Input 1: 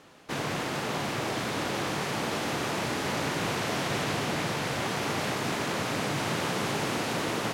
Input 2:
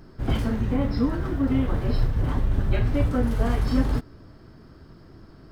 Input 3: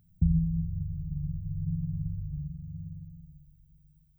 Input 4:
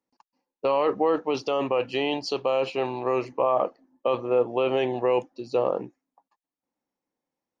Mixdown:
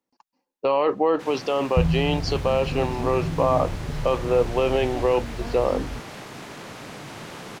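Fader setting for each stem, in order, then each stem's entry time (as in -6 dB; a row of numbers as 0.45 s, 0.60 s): -8.5 dB, -10.0 dB, +3.0 dB, +2.0 dB; 0.90 s, 2.00 s, 1.55 s, 0.00 s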